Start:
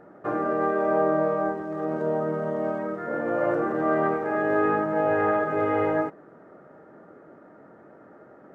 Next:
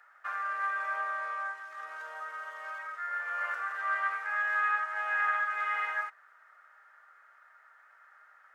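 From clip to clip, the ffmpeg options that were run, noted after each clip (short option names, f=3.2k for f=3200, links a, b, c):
-af "highpass=f=1.4k:w=0.5412,highpass=f=1.4k:w=1.3066,volume=4dB"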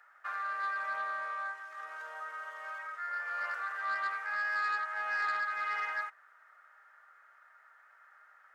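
-af "asoftclip=type=tanh:threshold=-24.5dB,volume=-1.5dB"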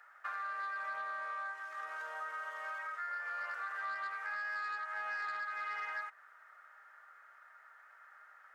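-af "acompressor=threshold=-39dB:ratio=6,volume=1.5dB"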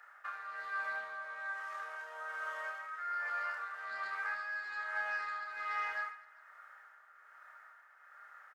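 -af "aecho=1:1:30|75|142.5|243.8|395.6:0.631|0.398|0.251|0.158|0.1,tremolo=f=1.2:d=0.51,volume=1dB"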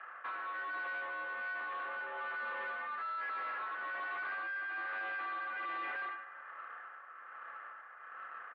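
-af "aeval=exprs='(tanh(224*val(0)+0.25)-tanh(0.25))/224':c=same,highpass=f=380:t=q:w=0.5412,highpass=f=380:t=q:w=1.307,lowpass=f=3k:t=q:w=0.5176,lowpass=f=3k:t=q:w=0.7071,lowpass=f=3k:t=q:w=1.932,afreqshift=-79,volume=9.5dB"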